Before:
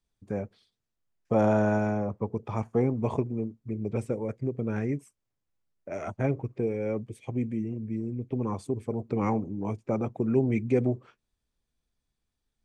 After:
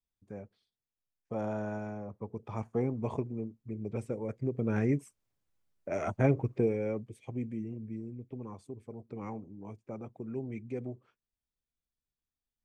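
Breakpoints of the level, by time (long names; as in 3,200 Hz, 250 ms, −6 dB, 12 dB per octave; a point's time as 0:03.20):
0:02.02 −12 dB
0:02.61 −6 dB
0:04.08 −6 dB
0:04.89 +1.5 dB
0:06.60 +1.5 dB
0:07.07 −6.5 dB
0:07.82 −6.5 dB
0:08.53 −13.5 dB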